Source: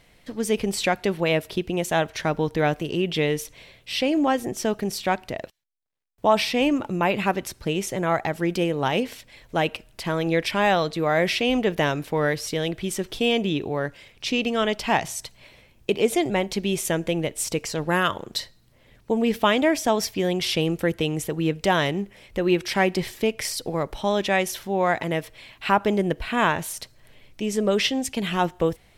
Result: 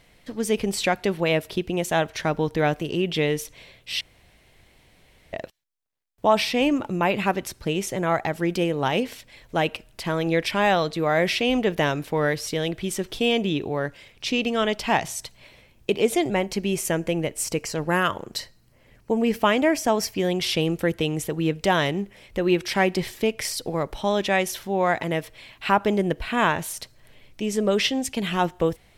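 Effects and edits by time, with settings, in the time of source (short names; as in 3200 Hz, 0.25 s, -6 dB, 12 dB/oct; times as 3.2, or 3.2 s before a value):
4.01–5.33 room tone
16.34–20.18 bell 3600 Hz -9.5 dB 0.23 oct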